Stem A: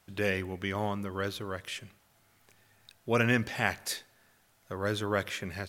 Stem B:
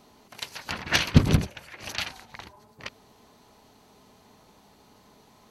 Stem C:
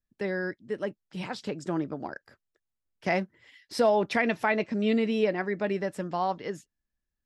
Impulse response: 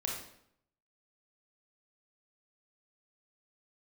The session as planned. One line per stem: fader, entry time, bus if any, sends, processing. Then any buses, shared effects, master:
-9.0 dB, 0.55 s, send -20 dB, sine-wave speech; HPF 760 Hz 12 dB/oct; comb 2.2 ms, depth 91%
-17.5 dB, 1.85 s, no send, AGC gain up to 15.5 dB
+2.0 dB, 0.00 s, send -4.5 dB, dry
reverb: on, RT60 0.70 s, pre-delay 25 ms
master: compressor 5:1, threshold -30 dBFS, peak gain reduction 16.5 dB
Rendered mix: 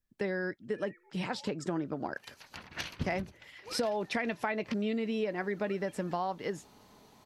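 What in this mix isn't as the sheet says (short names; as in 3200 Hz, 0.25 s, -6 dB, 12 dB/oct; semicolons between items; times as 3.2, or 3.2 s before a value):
stem A -9.0 dB -> -21.0 dB; stem C: send off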